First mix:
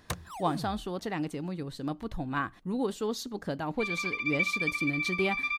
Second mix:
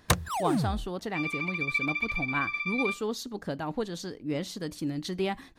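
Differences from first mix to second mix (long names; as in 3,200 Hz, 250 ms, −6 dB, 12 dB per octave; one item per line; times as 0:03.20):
first sound +11.0 dB
second sound: entry −2.65 s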